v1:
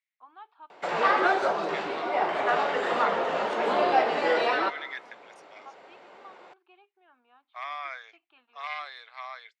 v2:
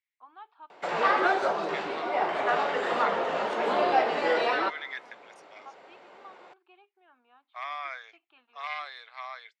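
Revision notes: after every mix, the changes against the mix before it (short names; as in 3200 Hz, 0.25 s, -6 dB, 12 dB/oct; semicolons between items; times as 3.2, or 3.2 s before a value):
background: send -6.5 dB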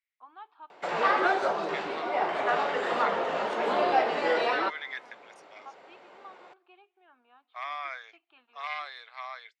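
first voice: send on; background: send -9.0 dB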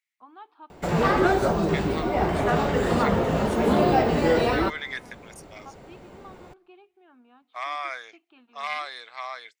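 second voice +4.0 dB; master: remove BPF 640–4100 Hz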